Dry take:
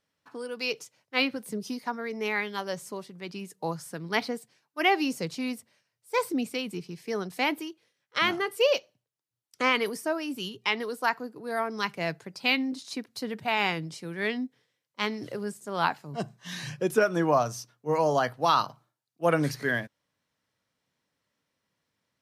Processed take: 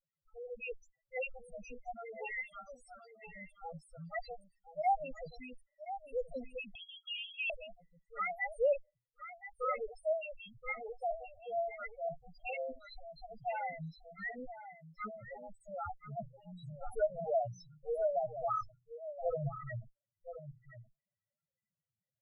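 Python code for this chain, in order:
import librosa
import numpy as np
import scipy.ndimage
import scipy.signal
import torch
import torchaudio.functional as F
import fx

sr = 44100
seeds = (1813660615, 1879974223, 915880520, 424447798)

y = fx.lower_of_two(x, sr, delay_ms=1.5)
y = fx.highpass(y, sr, hz=1100.0, slope=12, at=(2.37, 3.28))
y = fx.spec_topn(y, sr, count=2)
y = y + 10.0 ** (-12.0 / 20.0) * np.pad(y, (int(1025 * sr / 1000.0), 0))[:len(y)]
y = fx.freq_invert(y, sr, carrier_hz=3300, at=(6.75, 7.5))
y = y * librosa.db_to_amplitude(-3.0)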